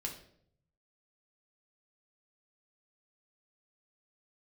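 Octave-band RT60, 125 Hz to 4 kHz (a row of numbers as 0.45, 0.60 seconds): 1.3, 0.80, 0.75, 0.55, 0.50, 0.50 seconds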